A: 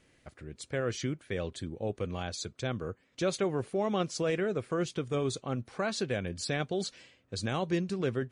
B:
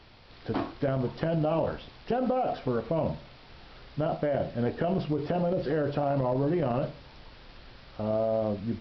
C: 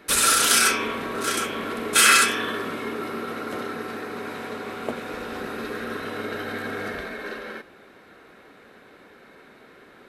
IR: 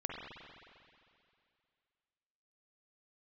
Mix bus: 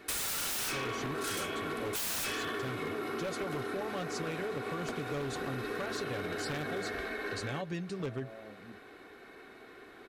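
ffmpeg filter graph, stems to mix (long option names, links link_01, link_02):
-filter_complex "[0:a]aecho=1:1:7:0.58,volume=-3.5dB[link_01];[1:a]highpass=130,acompressor=threshold=-29dB:ratio=6,volume=-16.5dB[link_02];[2:a]aecho=1:1:2.7:0.45,volume=-3.5dB[link_03];[link_01][link_02][link_03]amix=inputs=3:normalize=0,aeval=exprs='0.0631*(abs(mod(val(0)/0.0631+3,4)-2)-1)':channel_layout=same,acompressor=threshold=-33dB:ratio=6"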